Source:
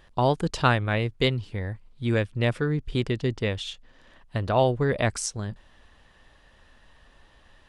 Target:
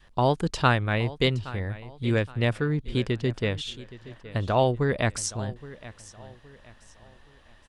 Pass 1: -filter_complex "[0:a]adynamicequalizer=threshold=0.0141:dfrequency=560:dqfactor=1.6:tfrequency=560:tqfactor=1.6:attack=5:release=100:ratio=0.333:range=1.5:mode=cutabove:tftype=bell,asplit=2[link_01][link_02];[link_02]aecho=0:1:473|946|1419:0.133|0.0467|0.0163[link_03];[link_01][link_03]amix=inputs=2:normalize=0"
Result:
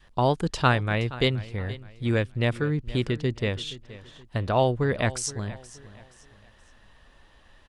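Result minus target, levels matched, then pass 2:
echo 347 ms early
-filter_complex "[0:a]adynamicequalizer=threshold=0.0141:dfrequency=560:dqfactor=1.6:tfrequency=560:tqfactor=1.6:attack=5:release=100:ratio=0.333:range=1.5:mode=cutabove:tftype=bell,asplit=2[link_01][link_02];[link_02]aecho=0:1:820|1640|2460:0.133|0.0467|0.0163[link_03];[link_01][link_03]amix=inputs=2:normalize=0"

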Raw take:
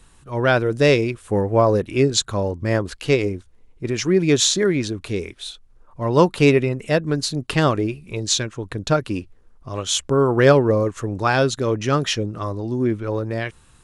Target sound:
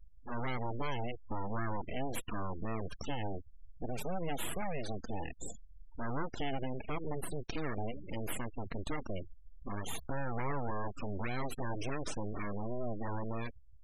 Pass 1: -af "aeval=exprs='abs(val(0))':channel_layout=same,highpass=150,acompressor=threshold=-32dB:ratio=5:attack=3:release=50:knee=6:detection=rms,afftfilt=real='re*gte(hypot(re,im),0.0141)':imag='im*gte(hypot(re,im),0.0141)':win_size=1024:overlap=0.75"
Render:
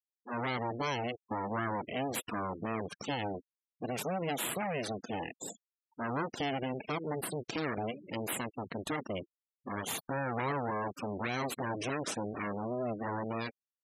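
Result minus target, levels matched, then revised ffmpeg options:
125 Hz band −4.5 dB
-af "aeval=exprs='abs(val(0))':channel_layout=same,acompressor=threshold=-32dB:ratio=5:attack=3:release=50:knee=6:detection=rms,afftfilt=real='re*gte(hypot(re,im),0.0141)':imag='im*gte(hypot(re,im),0.0141)':win_size=1024:overlap=0.75"

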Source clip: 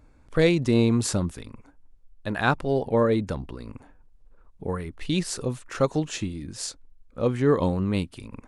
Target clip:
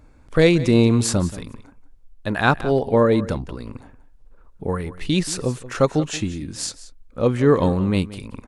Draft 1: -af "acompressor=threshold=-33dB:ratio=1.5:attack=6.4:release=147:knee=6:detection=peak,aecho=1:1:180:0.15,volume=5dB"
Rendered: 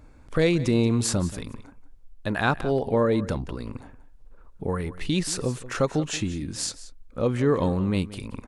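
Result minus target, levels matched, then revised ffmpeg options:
downward compressor: peak gain reduction +7 dB
-af "aecho=1:1:180:0.15,volume=5dB"

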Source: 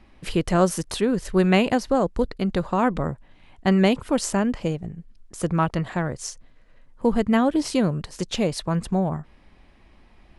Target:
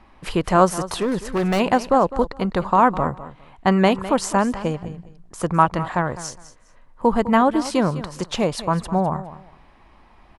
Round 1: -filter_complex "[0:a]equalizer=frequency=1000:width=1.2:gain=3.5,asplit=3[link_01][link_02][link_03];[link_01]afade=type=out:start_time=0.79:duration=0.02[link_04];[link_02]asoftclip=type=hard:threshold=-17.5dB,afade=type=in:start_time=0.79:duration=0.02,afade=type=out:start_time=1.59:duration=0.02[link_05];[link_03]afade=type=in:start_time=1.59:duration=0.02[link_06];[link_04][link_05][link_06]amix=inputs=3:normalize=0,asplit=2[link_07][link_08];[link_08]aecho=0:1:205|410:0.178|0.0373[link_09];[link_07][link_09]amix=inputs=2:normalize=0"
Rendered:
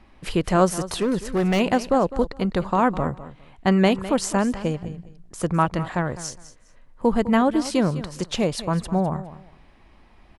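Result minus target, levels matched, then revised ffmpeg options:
1,000 Hz band −3.5 dB
-filter_complex "[0:a]equalizer=frequency=1000:width=1.2:gain=10.5,asplit=3[link_01][link_02][link_03];[link_01]afade=type=out:start_time=0.79:duration=0.02[link_04];[link_02]asoftclip=type=hard:threshold=-17.5dB,afade=type=in:start_time=0.79:duration=0.02,afade=type=out:start_time=1.59:duration=0.02[link_05];[link_03]afade=type=in:start_time=1.59:duration=0.02[link_06];[link_04][link_05][link_06]amix=inputs=3:normalize=0,asplit=2[link_07][link_08];[link_08]aecho=0:1:205|410:0.178|0.0373[link_09];[link_07][link_09]amix=inputs=2:normalize=0"

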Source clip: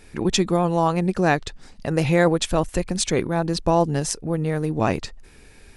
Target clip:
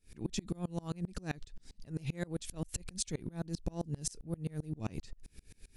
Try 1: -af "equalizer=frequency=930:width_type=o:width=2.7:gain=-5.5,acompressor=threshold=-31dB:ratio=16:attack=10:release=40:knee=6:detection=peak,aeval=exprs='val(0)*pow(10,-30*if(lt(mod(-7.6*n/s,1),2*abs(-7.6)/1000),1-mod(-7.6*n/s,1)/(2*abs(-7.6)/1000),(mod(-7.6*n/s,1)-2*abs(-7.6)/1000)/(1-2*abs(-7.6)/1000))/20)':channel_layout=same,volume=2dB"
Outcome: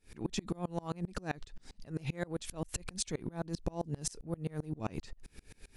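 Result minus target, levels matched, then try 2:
1,000 Hz band +5.5 dB
-af "equalizer=frequency=930:width_type=o:width=2.7:gain=-16.5,acompressor=threshold=-31dB:ratio=16:attack=10:release=40:knee=6:detection=peak,aeval=exprs='val(0)*pow(10,-30*if(lt(mod(-7.6*n/s,1),2*abs(-7.6)/1000),1-mod(-7.6*n/s,1)/(2*abs(-7.6)/1000),(mod(-7.6*n/s,1)-2*abs(-7.6)/1000)/(1-2*abs(-7.6)/1000))/20)':channel_layout=same,volume=2dB"

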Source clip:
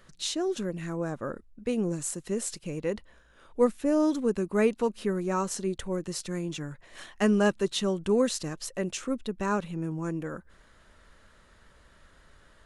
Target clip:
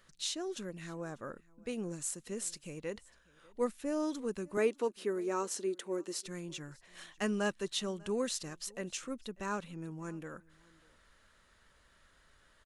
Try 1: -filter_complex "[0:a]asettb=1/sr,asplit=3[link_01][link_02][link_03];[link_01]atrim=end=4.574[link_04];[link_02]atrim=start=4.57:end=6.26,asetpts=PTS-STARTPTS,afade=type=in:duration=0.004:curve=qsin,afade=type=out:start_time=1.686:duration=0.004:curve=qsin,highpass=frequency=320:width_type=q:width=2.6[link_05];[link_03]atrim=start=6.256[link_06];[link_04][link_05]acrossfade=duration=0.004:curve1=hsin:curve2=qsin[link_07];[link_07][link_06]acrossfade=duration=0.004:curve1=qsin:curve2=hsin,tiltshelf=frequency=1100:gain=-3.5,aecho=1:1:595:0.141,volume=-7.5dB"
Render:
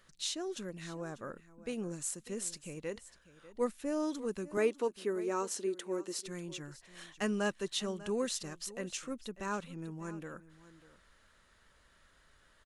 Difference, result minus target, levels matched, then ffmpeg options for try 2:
echo-to-direct +7.5 dB
-filter_complex "[0:a]asettb=1/sr,asplit=3[link_01][link_02][link_03];[link_01]atrim=end=4.574[link_04];[link_02]atrim=start=4.57:end=6.26,asetpts=PTS-STARTPTS,afade=type=in:duration=0.004:curve=qsin,afade=type=out:start_time=1.686:duration=0.004:curve=qsin,highpass=frequency=320:width_type=q:width=2.6[link_05];[link_03]atrim=start=6.256[link_06];[link_04][link_05]acrossfade=duration=0.004:curve1=hsin:curve2=qsin[link_07];[link_07][link_06]acrossfade=duration=0.004:curve1=qsin:curve2=hsin,tiltshelf=frequency=1100:gain=-3.5,aecho=1:1:595:0.0596,volume=-7.5dB"

